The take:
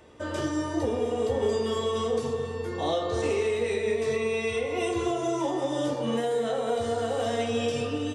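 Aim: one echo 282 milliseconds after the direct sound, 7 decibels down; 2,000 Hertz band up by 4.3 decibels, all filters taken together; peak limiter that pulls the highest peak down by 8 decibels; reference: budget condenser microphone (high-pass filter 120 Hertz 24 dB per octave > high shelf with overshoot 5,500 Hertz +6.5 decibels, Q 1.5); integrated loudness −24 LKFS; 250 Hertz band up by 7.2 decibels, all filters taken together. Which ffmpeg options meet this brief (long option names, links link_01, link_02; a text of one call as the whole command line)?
ffmpeg -i in.wav -af "equalizer=frequency=250:width_type=o:gain=9,equalizer=frequency=2000:width_type=o:gain=6,alimiter=limit=-19.5dB:level=0:latency=1,highpass=frequency=120:width=0.5412,highpass=frequency=120:width=1.3066,highshelf=frequency=5500:width_type=q:width=1.5:gain=6.5,aecho=1:1:282:0.447,volume=3dB" out.wav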